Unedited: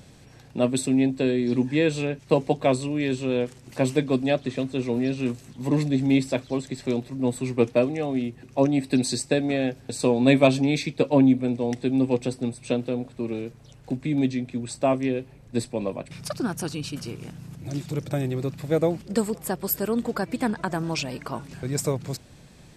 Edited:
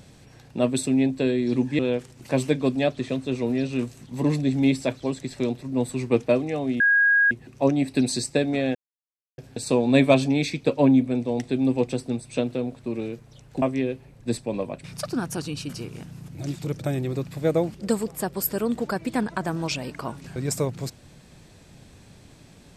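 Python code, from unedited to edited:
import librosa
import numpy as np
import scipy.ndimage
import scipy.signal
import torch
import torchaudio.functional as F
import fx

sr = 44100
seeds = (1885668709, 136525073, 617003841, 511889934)

y = fx.edit(x, sr, fx.cut(start_s=1.79, length_s=1.47),
    fx.insert_tone(at_s=8.27, length_s=0.51, hz=1640.0, db=-15.0),
    fx.insert_silence(at_s=9.71, length_s=0.63),
    fx.cut(start_s=13.95, length_s=0.94), tone=tone)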